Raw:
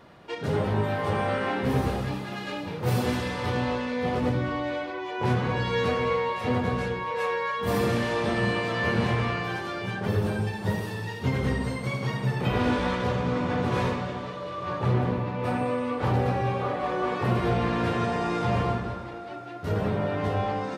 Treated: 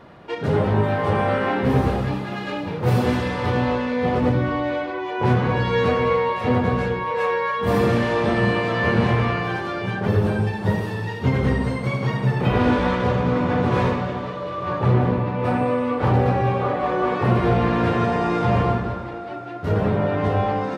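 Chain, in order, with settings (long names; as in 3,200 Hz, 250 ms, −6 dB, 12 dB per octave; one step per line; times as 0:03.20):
high-shelf EQ 3,800 Hz −10 dB
level +6.5 dB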